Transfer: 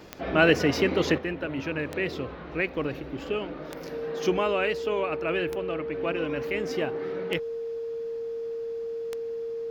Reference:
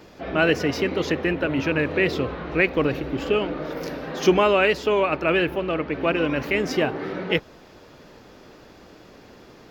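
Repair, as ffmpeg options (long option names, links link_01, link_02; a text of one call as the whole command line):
ffmpeg -i in.wav -af "adeclick=threshold=4,bandreject=frequency=460:width=30,asetnsamples=nb_out_samples=441:pad=0,asendcmd='1.18 volume volume 8dB',volume=0dB" out.wav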